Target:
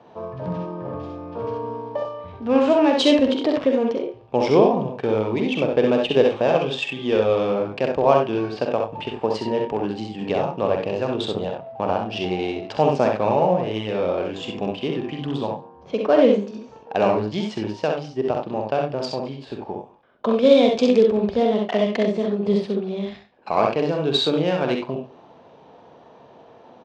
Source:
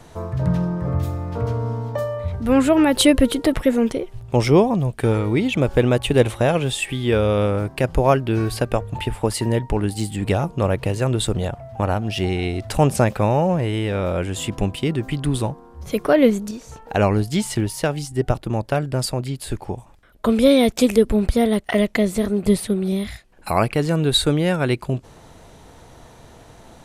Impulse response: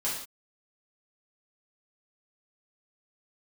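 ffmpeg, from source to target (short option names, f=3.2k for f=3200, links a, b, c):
-filter_complex "[0:a]asplit=2[a][b];[b]aecho=0:1:45|65|93:0.398|0.668|0.355[c];[a][c]amix=inputs=2:normalize=0,adynamicsmooth=sensitivity=2.5:basefreq=2.6k,highpass=270,equalizer=f=320:t=q:w=4:g=-4,equalizer=f=1.4k:t=q:w=4:g=-7,equalizer=f=2k:t=q:w=4:g=-9,equalizer=f=4k:t=q:w=4:g=-4,lowpass=f=5.4k:w=0.5412,lowpass=f=5.4k:w=1.3066,asplit=2[d][e];[e]adelay=139.9,volume=-22dB,highshelf=f=4k:g=-3.15[f];[d][f]amix=inputs=2:normalize=0"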